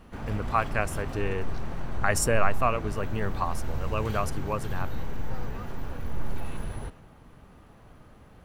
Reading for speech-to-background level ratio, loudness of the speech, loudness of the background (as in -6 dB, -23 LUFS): 7.0 dB, -30.0 LUFS, -37.0 LUFS